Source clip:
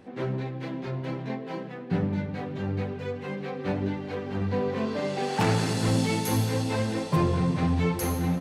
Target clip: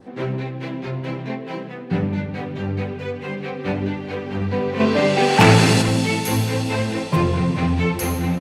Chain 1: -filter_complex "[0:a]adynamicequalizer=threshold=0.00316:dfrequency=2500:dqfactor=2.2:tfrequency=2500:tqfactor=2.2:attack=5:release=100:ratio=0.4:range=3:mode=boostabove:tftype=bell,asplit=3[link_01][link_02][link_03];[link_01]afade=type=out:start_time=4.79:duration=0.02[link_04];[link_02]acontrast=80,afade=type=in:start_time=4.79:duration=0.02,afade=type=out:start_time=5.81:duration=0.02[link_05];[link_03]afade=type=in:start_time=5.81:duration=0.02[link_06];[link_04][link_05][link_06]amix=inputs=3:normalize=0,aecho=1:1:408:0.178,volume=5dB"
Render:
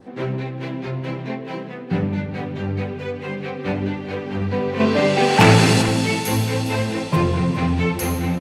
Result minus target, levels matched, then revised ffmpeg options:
echo-to-direct +10 dB
-filter_complex "[0:a]adynamicequalizer=threshold=0.00316:dfrequency=2500:dqfactor=2.2:tfrequency=2500:tqfactor=2.2:attack=5:release=100:ratio=0.4:range=3:mode=boostabove:tftype=bell,asplit=3[link_01][link_02][link_03];[link_01]afade=type=out:start_time=4.79:duration=0.02[link_04];[link_02]acontrast=80,afade=type=in:start_time=4.79:duration=0.02,afade=type=out:start_time=5.81:duration=0.02[link_05];[link_03]afade=type=in:start_time=5.81:duration=0.02[link_06];[link_04][link_05][link_06]amix=inputs=3:normalize=0,aecho=1:1:408:0.0562,volume=5dB"

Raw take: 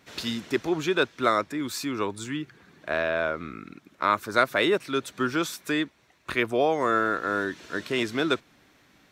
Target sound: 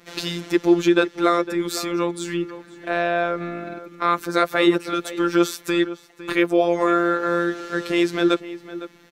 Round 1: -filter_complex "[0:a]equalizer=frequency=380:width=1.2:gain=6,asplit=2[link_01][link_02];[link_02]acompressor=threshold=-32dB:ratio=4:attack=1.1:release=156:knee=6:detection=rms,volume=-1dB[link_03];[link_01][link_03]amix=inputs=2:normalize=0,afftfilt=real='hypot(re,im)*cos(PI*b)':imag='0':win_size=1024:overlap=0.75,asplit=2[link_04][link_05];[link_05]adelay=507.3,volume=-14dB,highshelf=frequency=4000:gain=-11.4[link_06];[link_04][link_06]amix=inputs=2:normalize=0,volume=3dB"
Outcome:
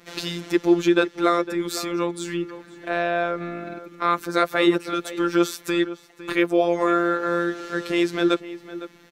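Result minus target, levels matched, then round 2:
downward compressor: peak gain reduction +7 dB
-filter_complex "[0:a]equalizer=frequency=380:width=1.2:gain=6,asplit=2[link_01][link_02];[link_02]acompressor=threshold=-22.5dB:ratio=4:attack=1.1:release=156:knee=6:detection=rms,volume=-1dB[link_03];[link_01][link_03]amix=inputs=2:normalize=0,afftfilt=real='hypot(re,im)*cos(PI*b)':imag='0':win_size=1024:overlap=0.75,asplit=2[link_04][link_05];[link_05]adelay=507.3,volume=-14dB,highshelf=frequency=4000:gain=-11.4[link_06];[link_04][link_06]amix=inputs=2:normalize=0,volume=3dB"

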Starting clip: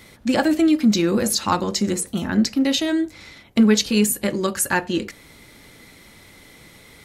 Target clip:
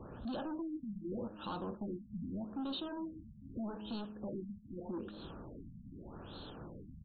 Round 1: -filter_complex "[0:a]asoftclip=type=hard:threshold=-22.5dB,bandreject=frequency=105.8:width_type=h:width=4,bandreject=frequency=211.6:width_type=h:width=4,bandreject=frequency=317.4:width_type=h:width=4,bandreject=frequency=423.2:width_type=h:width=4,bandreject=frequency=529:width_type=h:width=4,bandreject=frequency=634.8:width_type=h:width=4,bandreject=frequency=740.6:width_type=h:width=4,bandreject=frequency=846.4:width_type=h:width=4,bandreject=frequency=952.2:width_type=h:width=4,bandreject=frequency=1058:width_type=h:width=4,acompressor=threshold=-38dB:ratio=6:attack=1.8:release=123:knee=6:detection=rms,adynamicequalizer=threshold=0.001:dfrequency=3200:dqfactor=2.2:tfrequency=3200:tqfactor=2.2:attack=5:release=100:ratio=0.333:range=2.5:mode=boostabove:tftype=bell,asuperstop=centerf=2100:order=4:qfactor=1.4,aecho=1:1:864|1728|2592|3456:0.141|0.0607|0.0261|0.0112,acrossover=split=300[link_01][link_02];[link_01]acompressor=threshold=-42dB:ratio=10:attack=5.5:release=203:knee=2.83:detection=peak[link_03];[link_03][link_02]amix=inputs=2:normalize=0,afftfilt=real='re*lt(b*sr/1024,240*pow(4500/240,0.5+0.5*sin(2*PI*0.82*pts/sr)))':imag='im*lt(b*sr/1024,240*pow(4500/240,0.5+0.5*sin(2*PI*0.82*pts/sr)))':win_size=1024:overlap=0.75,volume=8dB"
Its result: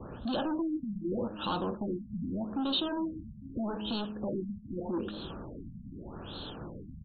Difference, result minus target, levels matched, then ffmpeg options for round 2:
downward compressor: peak gain reduction −9 dB; 4,000 Hz band +4.0 dB
-filter_complex "[0:a]asoftclip=type=hard:threshold=-22.5dB,bandreject=frequency=105.8:width_type=h:width=4,bandreject=frequency=211.6:width_type=h:width=4,bandreject=frequency=317.4:width_type=h:width=4,bandreject=frequency=423.2:width_type=h:width=4,bandreject=frequency=529:width_type=h:width=4,bandreject=frequency=634.8:width_type=h:width=4,bandreject=frequency=740.6:width_type=h:width=4,bandreject=frequency=846.4:width_type=h:width=4,bandreject=frequency=952.2:width_type=h:width=4,bandreject=frequency=1058:width_type=h:width=4,acompressor=threshold=-48.5dB:ratio=6:attack=1.8:release=123:knee=6:detection=rms,adynamicequalizer=threshold=0.001:dfrequency=10000:dqfactor=2.2:tfrequency=10000:tqfactor=2.2:attack=5:release=100:ratio=0.333:range=2.5:mode=boostabove:tftype=bell,asuperstop=centerf=2100:order=4:qfactor=1.4,aecho=1:1:864|1728|2592|3456:0.141|0.0607|0.0261|0.0112,acrossover=split=300[link_01][link_02];[link_01]acompressor=threshold=-42dB:ratio=10:attack=5.5:release=203:knee=2.83:detection=peak[link_03];[link_03][link_02]amix=inputs=2:normalize=0,afftfilt=real='re*lt(b*sr/1024,240*pow(4500/240,0.5+0.5*sin(2*PI*0.82*pts/sr)))':imag='im*lt(b*sr/1024,240*pow(4500/240,0.5+0.5*sin(2*PI*0.82*pts/sr)))':win_size=1024:overlap=0.75,volume=8dB"

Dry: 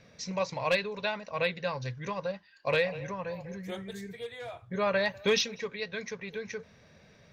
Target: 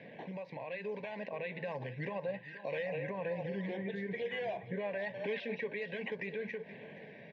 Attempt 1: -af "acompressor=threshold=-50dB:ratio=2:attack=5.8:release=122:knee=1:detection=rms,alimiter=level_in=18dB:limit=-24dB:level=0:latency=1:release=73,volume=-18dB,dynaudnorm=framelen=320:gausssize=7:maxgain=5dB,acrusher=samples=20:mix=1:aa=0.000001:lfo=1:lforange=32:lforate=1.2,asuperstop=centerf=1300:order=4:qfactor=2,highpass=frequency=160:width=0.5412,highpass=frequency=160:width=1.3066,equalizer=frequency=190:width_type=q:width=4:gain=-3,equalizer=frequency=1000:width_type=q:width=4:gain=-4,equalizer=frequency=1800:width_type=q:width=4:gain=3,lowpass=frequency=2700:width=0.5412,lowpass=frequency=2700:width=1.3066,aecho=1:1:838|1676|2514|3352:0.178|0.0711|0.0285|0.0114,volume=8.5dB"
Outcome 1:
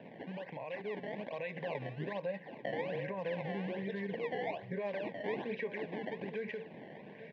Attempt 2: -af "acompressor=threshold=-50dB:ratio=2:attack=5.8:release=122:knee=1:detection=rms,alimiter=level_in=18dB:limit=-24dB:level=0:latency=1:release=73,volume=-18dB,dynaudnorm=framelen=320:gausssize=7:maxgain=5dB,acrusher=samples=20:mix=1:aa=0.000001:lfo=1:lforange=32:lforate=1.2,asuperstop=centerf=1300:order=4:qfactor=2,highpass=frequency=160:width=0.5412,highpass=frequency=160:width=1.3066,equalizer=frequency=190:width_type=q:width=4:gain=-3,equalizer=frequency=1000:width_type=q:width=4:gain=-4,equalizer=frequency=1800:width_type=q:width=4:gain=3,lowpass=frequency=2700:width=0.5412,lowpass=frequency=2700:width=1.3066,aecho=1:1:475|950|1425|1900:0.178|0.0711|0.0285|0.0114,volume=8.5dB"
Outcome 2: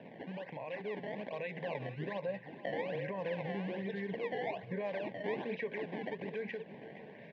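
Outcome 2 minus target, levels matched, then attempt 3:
sample-and-hold swept by an LFO: distortion +8 dB
-af "acompressor=threshold=-50dB:ratio=2:attack=5.8:release=122:knee=1:detection=rms,alimiter=level_in=18dB:limit=-24dB:level=0:latency=1:release=73,volume=-18dB,dynaudnorm=framelen=320:gausssize=7:maxgain=5dB,acrusher=samples=5:mix=1:aa=0.000001:lfo=1:lforange=8:lforate=1.2,asuperstop=centerf=1300:order=4:qfactor=2,highpass=frequency=160:width=0.5412,highpass=frequency=160:width=1.3066,equalizer=frequency=190:width_type=q:width=4:gain=-3,equalizer=frequency=1000:width_type=q:width=4:gain=-4,equalizer=frequency=1800:width_type=q:width=4:gain=3,lowpass=frequency=2700:width=0.5412,lowpass=frequency=2700:width=1.3066,aecho=1:1:475|950|1425|1900:0.178|0.0711|0.0285|0.0114,volume=8.5dB"

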